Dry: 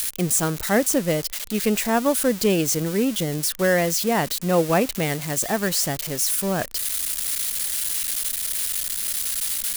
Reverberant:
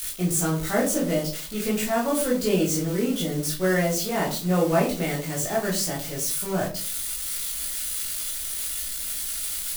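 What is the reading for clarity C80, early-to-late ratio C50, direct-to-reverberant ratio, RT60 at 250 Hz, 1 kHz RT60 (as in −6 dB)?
12.5 dB, 7.5 dB, −5.5 dB, 0.60 s, 0.35 s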